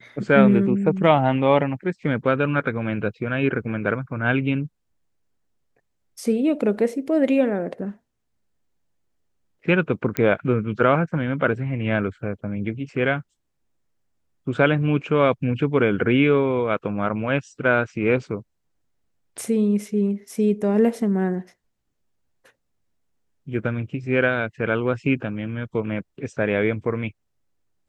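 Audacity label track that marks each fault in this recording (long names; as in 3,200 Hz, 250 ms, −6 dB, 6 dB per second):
10.170000	10.170000	click −9 dBFS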